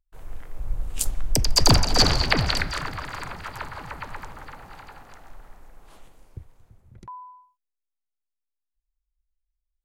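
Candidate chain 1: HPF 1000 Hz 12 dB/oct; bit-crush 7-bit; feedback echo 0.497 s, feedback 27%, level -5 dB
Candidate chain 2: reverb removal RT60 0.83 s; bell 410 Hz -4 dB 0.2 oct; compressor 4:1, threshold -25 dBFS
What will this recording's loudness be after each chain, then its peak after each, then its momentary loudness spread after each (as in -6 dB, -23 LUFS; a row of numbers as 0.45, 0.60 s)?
-23.5, -33.0 LUFS; -3.5, -7.0 dBFS; 23, 18 LU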